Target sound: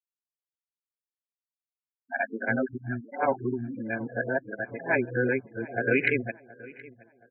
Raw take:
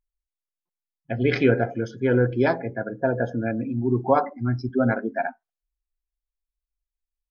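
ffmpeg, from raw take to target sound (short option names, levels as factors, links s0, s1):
-filter_complex "[0:a]areverse,adynamicsmooth=sensitivity=1.5:basefreq=3200,superequalizer=10b=0.708:11b=2.82:12b=3.16,afftfilt=real='re*gte(hypot(re,im),0.0447)':imag='im*gte(hypot(re,im),0.0447)':win_size=1024:overlap=0.75,highpass=f=180:p=1,asplit=2[s0][s1];[s1]adelay=722,lowpass=f=2900:p=1,volume=0.0944,asplit=2[s2][s3];[s3]adelay=722,lowpass=f=2900:p=1,volume=0.37,asplit=2[s4][s5];[s5]adelay=722,lowpass=f=2900:p=1,volume=0.37[s6];[s0][s2][s4][s6]amix=inputs=4:normalize=0,volume=0.531"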